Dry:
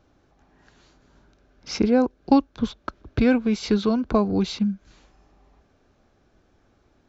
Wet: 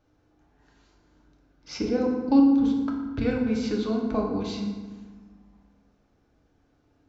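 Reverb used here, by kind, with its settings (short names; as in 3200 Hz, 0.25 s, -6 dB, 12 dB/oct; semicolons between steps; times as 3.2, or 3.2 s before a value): FDN reverb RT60 1.4 s, low-frequency decay 1.5×, high-frequency decay 0.6×, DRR -1 dB; gain -9 dB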